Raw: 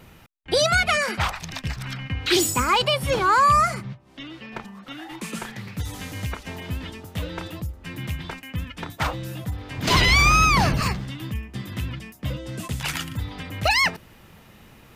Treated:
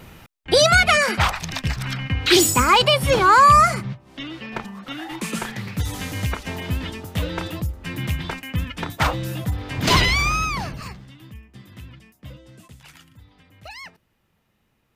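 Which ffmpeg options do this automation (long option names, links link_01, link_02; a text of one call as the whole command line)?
ffmpeg -i in.wav -af "volume=5dB,afade=type=out:start_time=9.8:duration=0.33:silence=0.398107,afade=type=out:start_time=10.13:duration=0.59:silence=0.398107,afade=type=out:start_time=12.32:duration=0.52:silence=0.398107" out.wav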